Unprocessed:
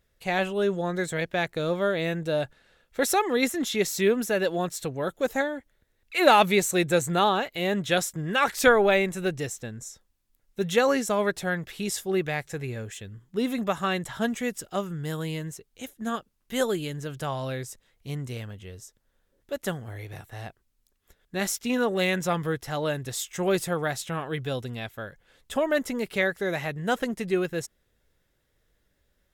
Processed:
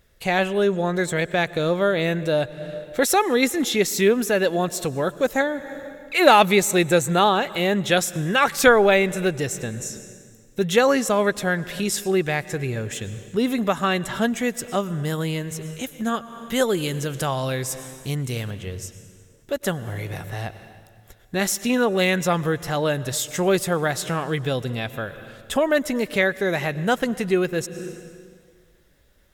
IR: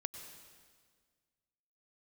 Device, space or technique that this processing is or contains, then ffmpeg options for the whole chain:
ducked reverb: -filter_complex "[0:a]asplit=3[a][b][c];[1:a]atrim=start_sample=2205[d];[b][d]afir=irnorm=-1:irlink=0[e];[c]apad=whole_len=1293617[f];[e][f]sidechaincompress=threshold=-38dB:ratio=8:attack=16:release=270,volume=3.5dB[g];[a][g]amix=inputs=2:normalize=0,asettb=1/sr,asplit=3[h][i][j];[h]atrim=end=16.774[k];[i]atrim=start=16.77:end=18.51,asetpts=PTS-STARTPTS,afade=t=in:d=0.004:c=qsin,afade=t=out:st=1.736:d=0.004:c=qsin,highshelf=f=4.2k:g=6[l];[j]atrim=start=18.506[m];[k][l]acrossfade=d=0.004:c1=hsin:c2=qsin[n];[n][m]acrossfade=d=0.004:c1=qsin:c2=hsin,volume=3.5dB"

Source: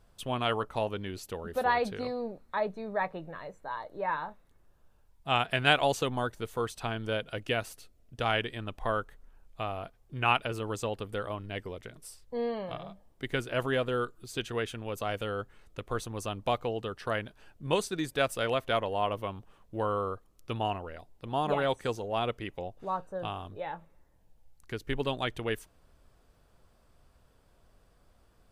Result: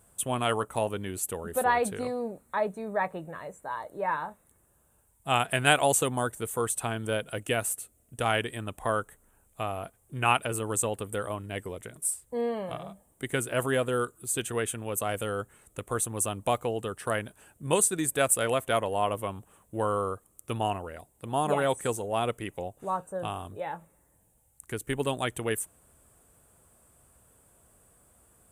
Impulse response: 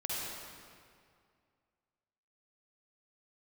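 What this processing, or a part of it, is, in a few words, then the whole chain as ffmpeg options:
budget condenser microphone: -af "highpass=63,highshelf=f=6.5k:t=q:w=3:g=11,volume=2.5dB"

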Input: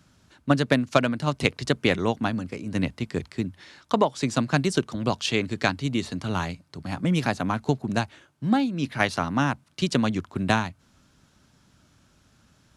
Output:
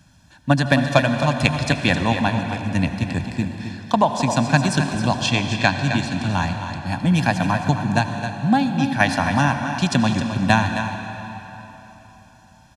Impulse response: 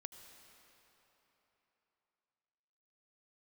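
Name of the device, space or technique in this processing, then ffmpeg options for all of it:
cave: -filter_complex "[0:a]aecho=1:1:264:0.335[a];[1:a]atrim=start_sample=2205[b];[a][b]afir=irnorm=-1:irlink=0,asettb=1/sr,asplit=3[c][d][e];[c]atrim=end=5.224[f];[d]atrim=start=5.22:end=6.87,asetpts=PTS-STARTPTS,afade=t=in:d=0.004:c=qsin,afade=t=out:st=1.646:d=0.004:c=qsin,lowpass=9.4k[g];[e]atrim=start=6.866[h];[f][g]acrossfade=d=0.004:c1=hsin:c2=qsin[i];[i][h]acrossfade=d=0.004:c1=qsin:c2=hsin,aecho=1:1:1.2:0.75,volume=8.5dB"

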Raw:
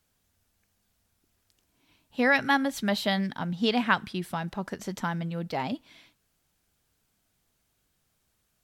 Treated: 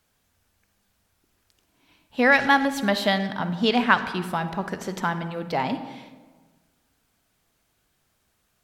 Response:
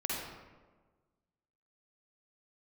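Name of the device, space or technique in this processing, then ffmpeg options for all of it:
saturated reverb return: -filter_complex "[0:a]equalizer=f=1.1k:w=0.34:g=4.5,asplit=2[a][b];[1:a]atrim=start_sample=2205[c];[b][c]afir=irnorm=-1:irlink=0,asoftclip=type=tanh:threshold=-14dB,volume=-11dB[d];[a][d]amix=inputs=2:normalize=0"

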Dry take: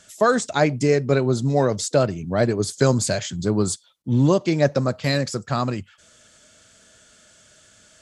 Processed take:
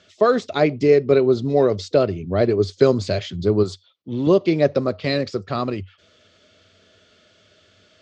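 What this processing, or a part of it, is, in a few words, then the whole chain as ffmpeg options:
guitar cabinet: -filter_complex "[0:a]asettb=1/sr,asplit=3[a][b][c];[a]atrim=end=3.634[d];[b]atrim=start=3.63:end=4.27,asetpts=PTS-STARTPTS,afade=t=in:d=0.004:c=qsin,afade=t=out:st=0.636:d=0.004:c=qsin,lowshelf=f=370:g=-7.5[e];[c]atrim=start=4.266[f];[d][e]acrossfade=d=0.004:c1=hsin:c2=qsin[g];[g][f]acrossfade=d=0.004:c1=qsin:c2=hsin,highpass=92,equalizer=f=93:t=q:w=4:g=9,equalizer=f=130:t=q:w=4:g=-8,equalizer=f=220:t=q:w=4:g=-3,equalizer=f=400:t=q:w=4:g=6,equalizer=f=890:t=q:w=4:g=-7,equalizer=f=1.6k:t=q:w=4:g=-7,lowpass=f=4.4k:w=0.5412,lowpass=f=4.4k:w=1.3066,volume=1.5dB"

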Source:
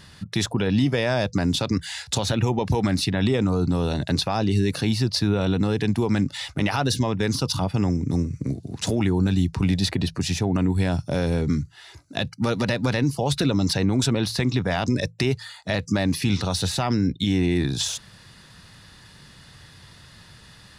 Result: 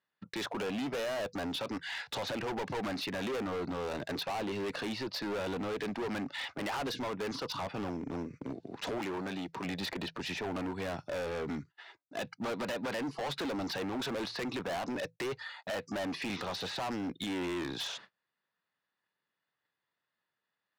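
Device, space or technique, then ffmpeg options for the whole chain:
walkie-talkie: -filter_complex "[0:a]highpass=410,lowpass=2.4k,asoftclip=type=hard:threshold=-33dB,agate=range=-33dB:threshold=-49dB:ratio=16:detection=peak,asettb=1/sr,asplit=3[a][b][c];[a]atrim=end=8.984[d];[b]atrim=start=8.98:end=9.65,asetpts=PTS-STARTPTS,afade=t=in:d=0.004:c=qsin,afade=t=out:st=0.666:d=0.004:c=qsin,highpass=f=170:p=1[e];[c]atrim=start=9.646[f];[d][e]acrossfade=d=0.004:c1=hsin:c2=qsin[g];[g][f]acrossfade=d=0.004:c1=qsin:c2=hsin"

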